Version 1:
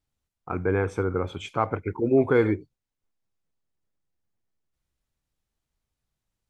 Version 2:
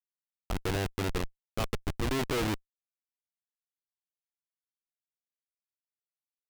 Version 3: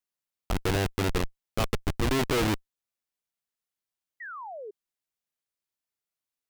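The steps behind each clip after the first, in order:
Schmitt trigger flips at -23.5 dBFS; dynamic EQ 3000 Hz, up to +4 dB, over -46 dBFS, Q 0.71
painted sound fall, 4.2–4.71, 390–2000 Hz -44 dBFS; gain +4.5 dB

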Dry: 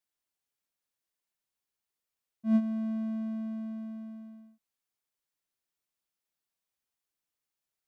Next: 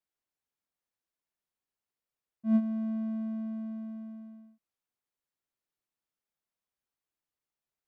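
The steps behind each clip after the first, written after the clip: high shelf 2400 Hz -8.5 dB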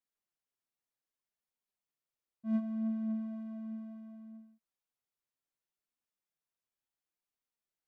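flange 0.67 Hz, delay 3.7 ms, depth 5 ms, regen +53%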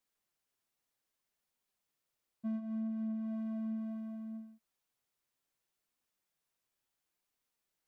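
compressor 16:1, threshold -41 dBFS, peak gain reduction 15 dB; gain +6.5 dB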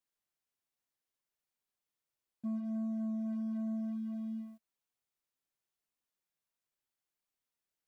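sample leveller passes 2; gain -2 dB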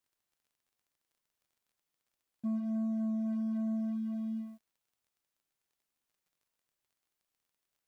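crackle 33/s -66 dBFS; gain +3 dB

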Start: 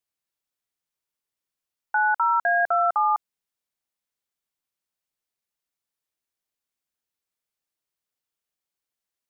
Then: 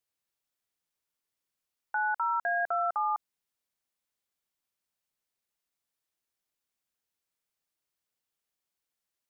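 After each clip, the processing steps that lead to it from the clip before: limiter -22.5 dBFS, peak gain reduction 8 dB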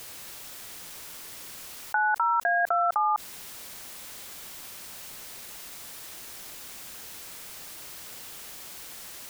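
fast leveller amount 100%; gain +4.5 dB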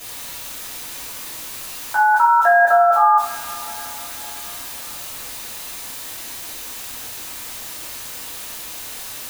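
two-slope reverb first 0.47 s, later 4.4 s, from -21 dB, DRR -9.5 dB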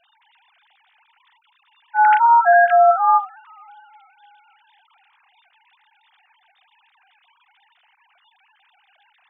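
sine-wave speech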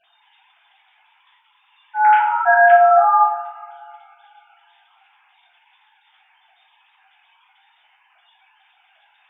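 two-slope reverb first 0.6 s, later 2.2 s, from -17 dB, DRR -4.5 dB; gain -4 dB

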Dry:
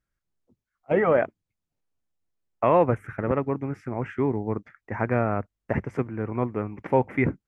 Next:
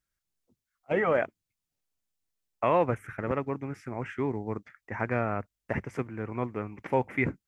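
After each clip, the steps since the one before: high shelf 2100 Hz +11.5 dB; gain -6 dB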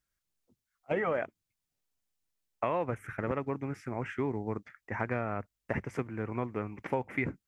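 compressor 6:1, threshold -27 dBFS, peak gain reduction 8 dB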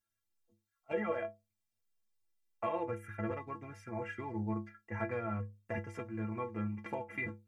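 metallic resonator 100 Hz, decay 0.37 s, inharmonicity 0.03; gain +6 dB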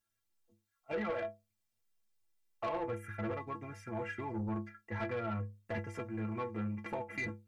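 soft clip -33 dBFS, distortion -13 dB; gain +2.5 dB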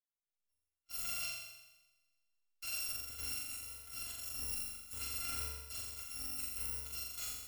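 FFT order left unsorted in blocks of 256 samples; flutter echo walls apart 7.3 m, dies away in 1.5 s; power-law curve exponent 1.4; gain -4.5 dB

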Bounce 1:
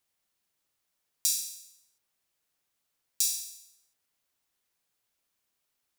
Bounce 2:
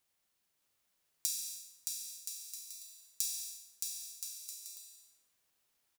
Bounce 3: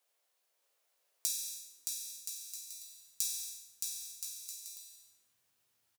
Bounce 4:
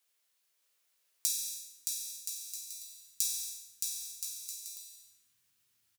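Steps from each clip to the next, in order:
compressor 6:1, threshold -32 dBFS, peak gain reduction 9.5 dB; on a send: bouncing-ball echo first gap 0.62 s, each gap 0.65×, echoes 5
doubler 18 ms -6.5 dB; de-hum 54.57 Hz, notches 39; high-pass sweep 520 Hz -> 93 Hz, 1.27–3.33
bell 630 Hz -12 dB 1.6 oct; gain +3 dB

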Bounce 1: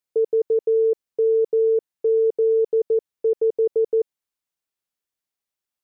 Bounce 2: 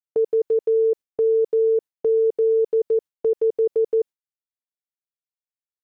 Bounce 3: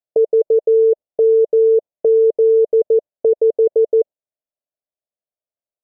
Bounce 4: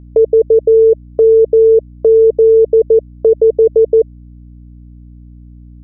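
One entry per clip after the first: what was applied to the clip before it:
gate with hold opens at -20 dBFS
synth low-pass 620 Hz, resonance Q 5.5
dynamic EQ 260 Hz, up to +3 dB, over -30 dBFS, Q 1; hum 60 Hz, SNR 25 dB; gain +3.5 dB

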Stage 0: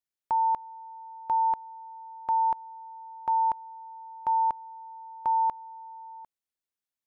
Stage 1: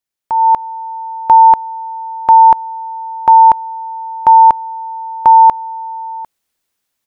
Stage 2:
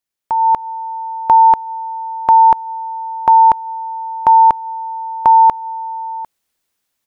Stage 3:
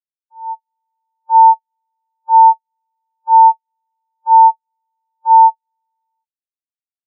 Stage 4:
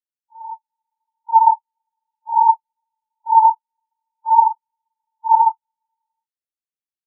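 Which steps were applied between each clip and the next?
AGC gain up to 12.5 dB; gain +7 dB
dynamic EQ 850 Hz, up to -3 dB, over -15 dBFS
doubler 49 ms -11.5 dB; spectral expander 4:1; gain -1 dB
phase scrambler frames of 50 ms; gain -5.5 dB

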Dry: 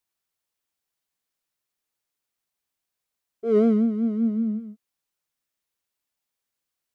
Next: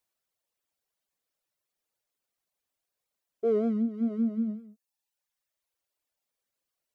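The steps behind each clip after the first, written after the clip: reverb removal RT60 1.1 s; bell 560 Hz +6.5 dB 0.77 oct; compressor 10:1, threshold -23 dBFS, peak gain reduction 11 dB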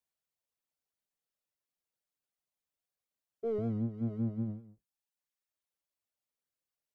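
octaver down 1 oct, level -1 dB; gain -8 dB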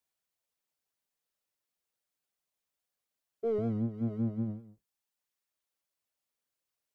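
low shelf 210 Hz -3.5 dB; gain +3.5 dB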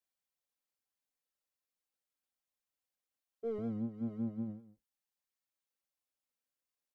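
comb 3.8 ms, depth 41%; gain -6.5 dB

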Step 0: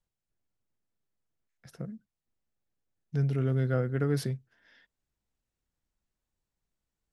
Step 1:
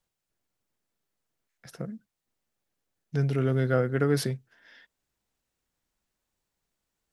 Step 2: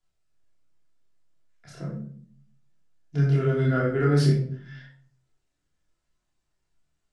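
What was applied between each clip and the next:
low shelf 180 Hz -9.5 dB; gain +7 dB
LPF 9200 Hz 24 dB/oct; chorus voices 4, 0.78 Hz, delay 28 ms, depth 1.2 ms; shoebox room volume 660 m³, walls furnished, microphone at 3.1 m

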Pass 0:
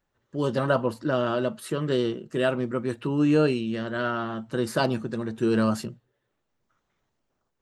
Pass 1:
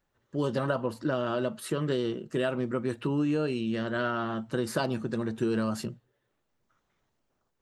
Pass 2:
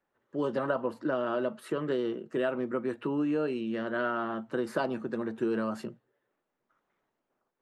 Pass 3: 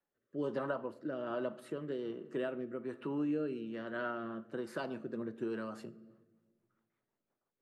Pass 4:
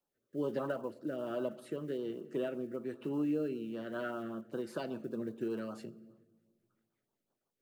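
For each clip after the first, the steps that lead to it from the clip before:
compressor 10:1, threshold -24 dBFS, peak gain reduction 8.5 dB
three-band isolator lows -16 dB, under 200 Hz, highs -12 dB, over 2500 Hz
shoebox room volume 1200 m³, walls mixed, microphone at 0.3 m; rotary speaker horn 1.2 Hz, later 6 Hz, at 5.77; gain -6 dB
block floating point 7-bit; LFO notch sine 5.1 Hz 940–2100 Hz; gain +1.5 dB

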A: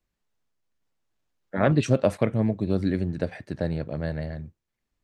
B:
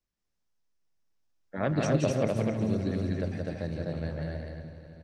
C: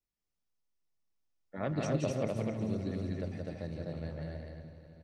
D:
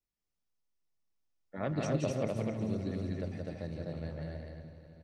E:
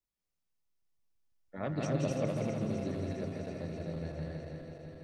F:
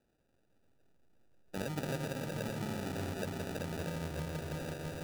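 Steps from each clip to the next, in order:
regenerating reverse delay 0.162 s, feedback 78%, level -13.5 dB; bell 5500 Hz +7 dB 0.48 oct; on a send: loudspeakers at several distances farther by 59 m -4 dB, 86 m -2 dB; on the sum: gain -8 dB
notch 1600 Hz, Q 11; gain -6 dB
nothing audible
regenerating reverse delay 0.165 s, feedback 85%, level -9 dB; gain -1.5 dB
high shelf 4900 Hz +10 dB; compressor 6:1, threshold -43 dBFS, peak gain reduction 16 dB; sample-and-hold 41×; gain +7.5 dB

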